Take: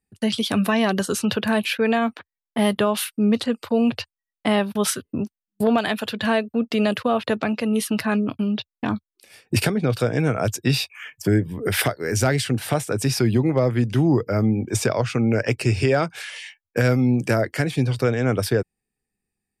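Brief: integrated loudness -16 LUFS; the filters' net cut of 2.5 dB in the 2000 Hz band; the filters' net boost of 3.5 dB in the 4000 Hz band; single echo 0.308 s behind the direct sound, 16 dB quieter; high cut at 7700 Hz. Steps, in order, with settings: LPF 7700 Hz; bell 2000 Hz -5 dB; bell 4000 Hz +6.5 dB; echo 0.308 s -16 dB; gain +6 dB

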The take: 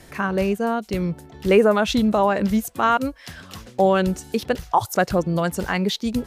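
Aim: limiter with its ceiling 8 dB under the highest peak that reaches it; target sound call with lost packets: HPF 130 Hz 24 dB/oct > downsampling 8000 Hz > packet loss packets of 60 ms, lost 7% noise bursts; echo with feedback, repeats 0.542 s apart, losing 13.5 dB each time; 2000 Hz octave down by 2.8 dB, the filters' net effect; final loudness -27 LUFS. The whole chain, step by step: bell 2000 Hz -4 dB; limiter -13.5 dBFS; HPF 130 Hz 24 dB/oct; feedback echo 0.542 s, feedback 21%, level -13.5 dB; downsampling 8000 Hz; packet loss packets of 60 ms, lost 7% noise bursts; gain -2.5 dB

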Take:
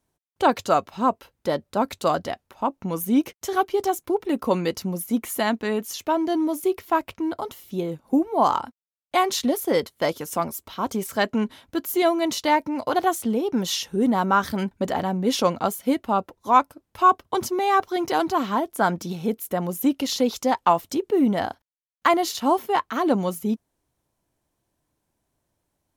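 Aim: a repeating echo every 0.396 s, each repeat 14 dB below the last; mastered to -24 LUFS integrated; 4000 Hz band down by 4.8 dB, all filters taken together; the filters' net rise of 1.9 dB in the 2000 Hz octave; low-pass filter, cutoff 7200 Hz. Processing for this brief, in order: LPF 7200 Hz; bell 2000 Hz +4 dB; bell 4000 Hz -7.5 dB; feedback echo 0.396 s, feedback 20%, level -14 dB; gain -0.5 dB

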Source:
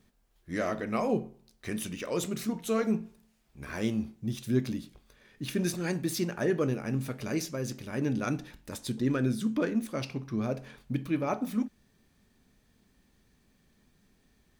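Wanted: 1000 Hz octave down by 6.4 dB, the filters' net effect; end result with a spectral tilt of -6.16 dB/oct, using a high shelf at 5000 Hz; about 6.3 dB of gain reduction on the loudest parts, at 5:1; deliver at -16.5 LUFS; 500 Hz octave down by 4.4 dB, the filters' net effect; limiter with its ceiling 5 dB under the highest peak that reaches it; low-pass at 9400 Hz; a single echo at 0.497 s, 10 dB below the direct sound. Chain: LPF 9400 Hz; bell 500 Hz -4 dB; bell 1000 Hz -7.5 dB; high shelf 5000 Hz -5.5 dB; compressor 5:1, threshold -31 dBFS; limiter -28 dBFS; echo 0.497 s -10 dB; gain +22.5 dB

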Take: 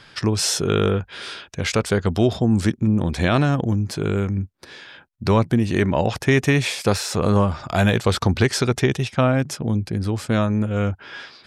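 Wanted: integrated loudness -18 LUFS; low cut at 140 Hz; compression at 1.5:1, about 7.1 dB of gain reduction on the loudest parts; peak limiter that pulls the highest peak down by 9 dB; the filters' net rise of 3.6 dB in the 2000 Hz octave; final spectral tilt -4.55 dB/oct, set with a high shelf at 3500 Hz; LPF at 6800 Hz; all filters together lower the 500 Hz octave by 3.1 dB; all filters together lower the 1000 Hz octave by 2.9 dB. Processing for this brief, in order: HPF 140 Hz; LPF 6800 Hz; bell 500 Hz -3 dB; bell 1000 Hz -5 dB; bell 2000 Hz +7.5 dB; high shelf 3500 Hz -5 dB; compressor 1.5:1, threshold -34 dBFS; gain +13.5 dB; limiter -5 dBFS

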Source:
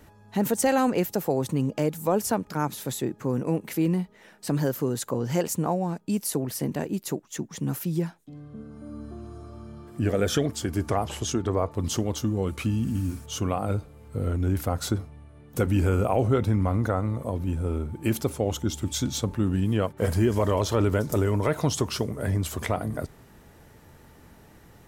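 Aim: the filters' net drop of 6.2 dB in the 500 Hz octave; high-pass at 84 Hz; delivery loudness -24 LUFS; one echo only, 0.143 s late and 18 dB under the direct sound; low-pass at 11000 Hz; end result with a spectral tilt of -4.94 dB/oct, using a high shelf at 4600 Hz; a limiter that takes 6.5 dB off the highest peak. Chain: HPF 84 Hz; LPF 11000 Hz; bell 500 Hz -8 dB; high shelf 4600 Hz +4.5 dB; limiter -17 dBFS; echo 0.143 s -18 dB; gain +5.5 dB

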